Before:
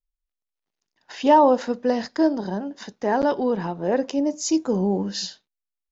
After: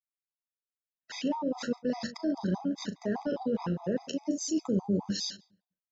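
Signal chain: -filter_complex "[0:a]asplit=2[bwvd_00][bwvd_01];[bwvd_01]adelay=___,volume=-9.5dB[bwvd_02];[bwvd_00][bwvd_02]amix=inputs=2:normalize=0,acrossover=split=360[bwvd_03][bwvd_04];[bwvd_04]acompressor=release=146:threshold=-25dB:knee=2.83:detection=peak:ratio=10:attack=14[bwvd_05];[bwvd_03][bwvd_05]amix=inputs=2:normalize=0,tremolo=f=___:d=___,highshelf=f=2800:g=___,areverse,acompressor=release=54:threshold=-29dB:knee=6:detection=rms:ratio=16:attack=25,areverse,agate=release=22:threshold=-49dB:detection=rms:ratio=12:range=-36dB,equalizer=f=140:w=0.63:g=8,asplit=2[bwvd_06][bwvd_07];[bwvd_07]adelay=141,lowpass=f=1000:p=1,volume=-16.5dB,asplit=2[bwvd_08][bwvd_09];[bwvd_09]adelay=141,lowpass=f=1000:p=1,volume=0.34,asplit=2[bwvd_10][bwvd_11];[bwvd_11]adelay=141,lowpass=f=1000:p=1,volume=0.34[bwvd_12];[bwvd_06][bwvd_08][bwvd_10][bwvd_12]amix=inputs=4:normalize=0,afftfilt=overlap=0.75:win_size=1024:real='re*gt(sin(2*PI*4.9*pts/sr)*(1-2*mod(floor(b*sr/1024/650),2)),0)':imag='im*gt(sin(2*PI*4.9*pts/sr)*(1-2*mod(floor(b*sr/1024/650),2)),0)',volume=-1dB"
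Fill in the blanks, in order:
39, 90, 0.261, 6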